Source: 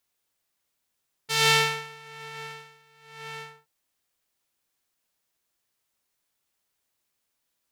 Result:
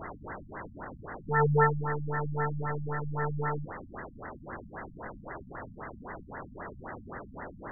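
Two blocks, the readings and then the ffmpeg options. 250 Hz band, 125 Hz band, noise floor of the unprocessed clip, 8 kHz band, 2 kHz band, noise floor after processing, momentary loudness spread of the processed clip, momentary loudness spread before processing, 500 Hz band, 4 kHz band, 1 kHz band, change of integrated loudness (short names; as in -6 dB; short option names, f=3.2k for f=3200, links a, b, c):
n/a, +10.0 dB, -79 dBFS, under -40 dB, -5.0 dB, -50 dBFS, 18 LU, 21 LU, +4.5 dB, under -40 dB, +2.0 dB, -10.5 dB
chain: -af "aeval=exprs='val(0)+0.5*0.0447*sgn(val(0))':c=same,afftfilt=real='re*lt(b*sr/1024,240*pow(2100/240,0.5+0.5*sin(2*PI*3.8*pts/sr)))':imag='im*lt(b*sr/1024,240*pow(2100/240,0.5+0.5*sin(2*PI*3.8*pts/sr)))':win_size=1024:overlap=0.75,volume=4dB"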